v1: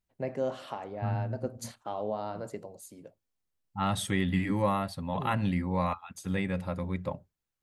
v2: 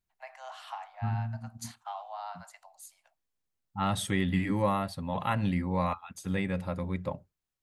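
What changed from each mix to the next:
first voice: add Butterworth high-pass 710 Hz 72 dB per octave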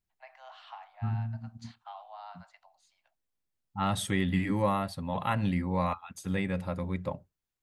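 first voice: add transistor ladder low-pass 5,200 Hz, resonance 25%

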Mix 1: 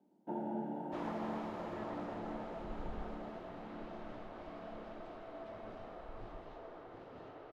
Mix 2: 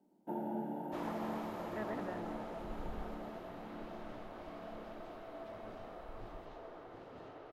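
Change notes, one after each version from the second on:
speech +8.5 dB
master: remove high-frequency loss of the air 68 metres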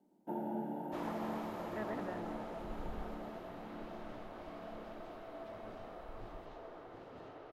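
nothing changed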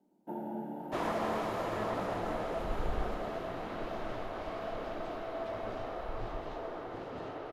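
second sound +10.0 dB

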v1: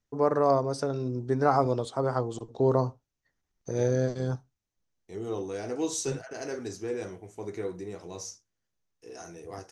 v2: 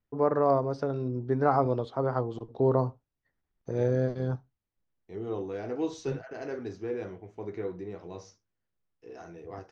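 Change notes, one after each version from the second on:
master: add high-frequency loss of the air 260 metres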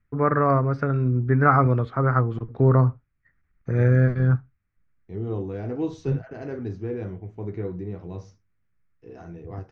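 first voice: add flat-topped bell 1,700 Hz +14.5 dB 1.3 octaves
master: add bass and treble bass +14 dB, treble −7 dB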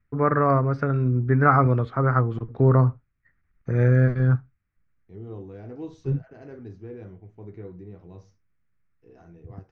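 second voice −9.0 dB

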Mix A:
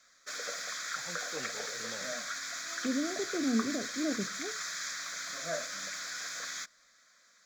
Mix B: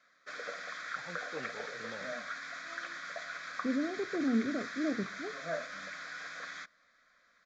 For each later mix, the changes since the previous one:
second voice: entry +0.80 s
master: add low-pass filter 2,600 Hz 12 dB per octave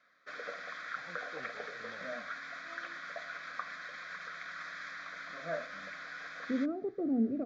first voice −6.0 dB
second voice: entry +2.85 s
master: add high-frequency loss of the air 120 metres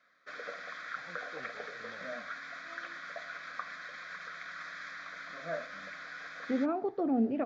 second voice: remove moving average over 47 samples

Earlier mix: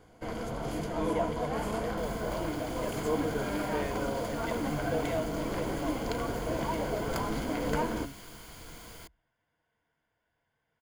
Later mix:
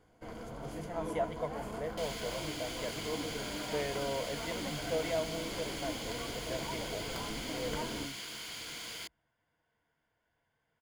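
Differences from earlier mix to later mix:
first sound −8.5 dB
second sound: add meter weighting curve D

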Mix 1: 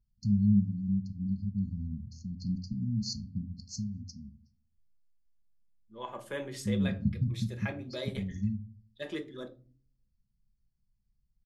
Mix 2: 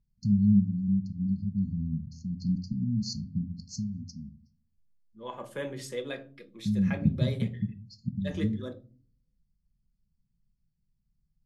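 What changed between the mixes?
second voice: entry −0.75 s
master: add thirty-one-band graphic EQ 160 Hz +10 dB, 250 Hz +4 dB, 500 Hz +4 dB

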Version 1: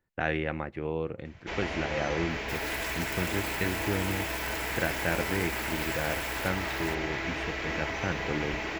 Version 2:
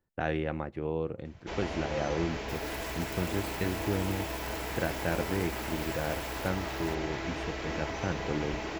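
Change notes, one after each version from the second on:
second sound −4.5 dB
master: add parametric band 2,100 Hz −7.5 dB 1.2 octaves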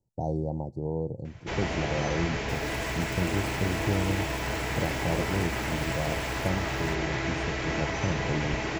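speech: add Chebyshev band-stop filter 910–4,500 Hz, order 5
first sound +3.5 dB
master: add graphic EQ with 10 bands 125 Hz +9 dB, 2,000 Hz +4 dB, 8,000 Hz +6 dB, 16,000 Hz −6 dB

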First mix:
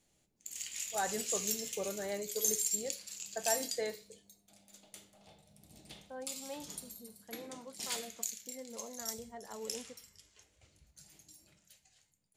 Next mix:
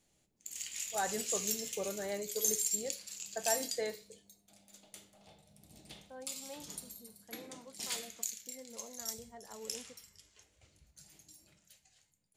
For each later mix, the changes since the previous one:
second voice −4.0 dB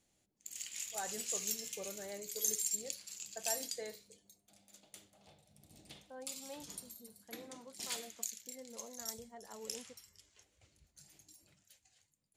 first voice −7.5 dB
reverb: off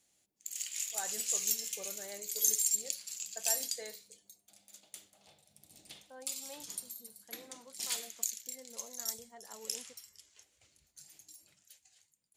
master: add spectral tilt +2 dB per octave

